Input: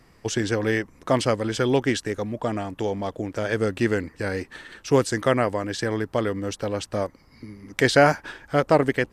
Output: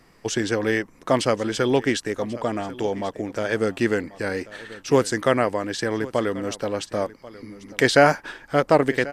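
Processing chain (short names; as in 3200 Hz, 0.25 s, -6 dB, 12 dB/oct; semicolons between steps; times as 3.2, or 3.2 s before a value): bell 70 Hz -10 dB 1.4 oct; echo 1.088 s -18.5 dB; gain +1.5 dB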